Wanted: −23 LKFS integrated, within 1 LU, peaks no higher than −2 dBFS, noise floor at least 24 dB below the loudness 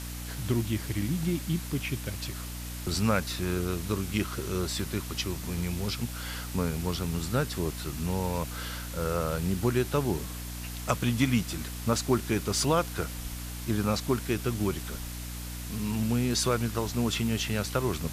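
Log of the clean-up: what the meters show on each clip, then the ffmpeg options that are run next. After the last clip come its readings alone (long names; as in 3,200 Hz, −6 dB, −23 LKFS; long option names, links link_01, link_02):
mains hum 60 Hz; hum harmonics up to 300 Hz; level of the hum −36 dBFS; background noise floor −38 dBFS; target noise floor −55 dBFS; integrated loudness −30.5 LKFS; sample peak −8.5 dBFS; target loudness −23.0 LKFS
→ -af "bandreject=frequency=60:width_type=h:width=4,bandreject=frequency=120:width_type=h:width=4,bandreject=frequency=180:width_type=h:width=4,bandreject=frequency=240:width_type=h:width=4,bandreject=frequency=300:width_type=h:width=4"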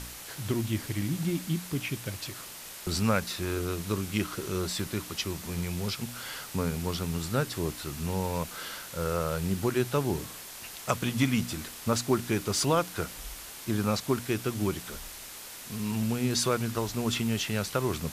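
mains hum none found; background noise floor −44 dBFS; target noise floor −55 dBFS
→ -af "afftdn=noise_reduction=11:noise_floor=-44"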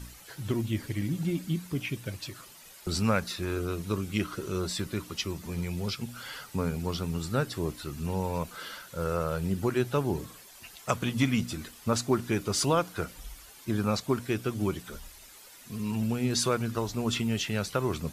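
background noise floor −51 dBFS; target noise floor −55 dBFS
→ -af "afftdn=noise_reduction=6:noise_floor=-51"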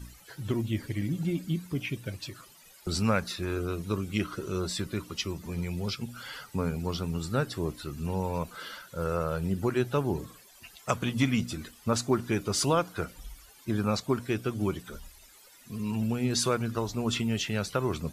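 background noise floor −55 dBFS; integrated loudness −31.0 LKFS; sample peak −9.0 dBFS; target loudness −23.0 LKFS
→ -af "volume=8dB,alimiter=limit=-2dB:level=0:latency=1"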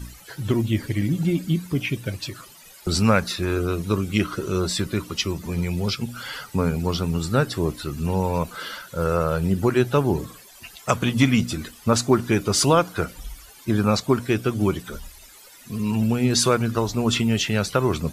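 integrated loudness −23.0 LKFS; sample peak −2.0 dBFS; background noise floor −47 dBFS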